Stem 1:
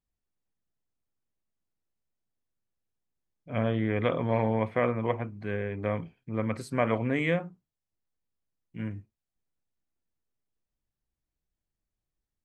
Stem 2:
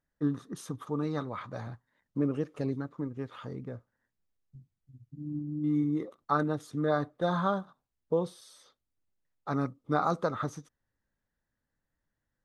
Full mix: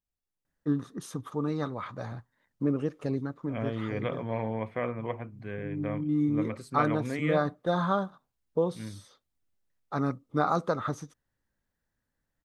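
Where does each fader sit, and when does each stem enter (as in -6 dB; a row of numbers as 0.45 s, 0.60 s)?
-5.5 dB, +1.5 dB; 0.00 s, 0.45 s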